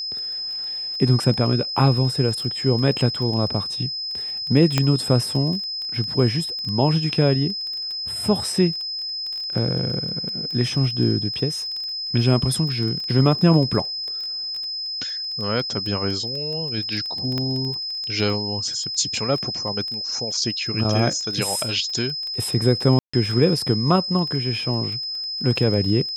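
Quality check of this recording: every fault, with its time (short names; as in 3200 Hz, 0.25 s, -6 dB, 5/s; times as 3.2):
crackle 13/s -27 dBFS
tone 5100 Hz -26 dBFS
4.78 pop -4 dBFS
17.38 pop -13 dBFS
22.99–23.14 gap 0.145 s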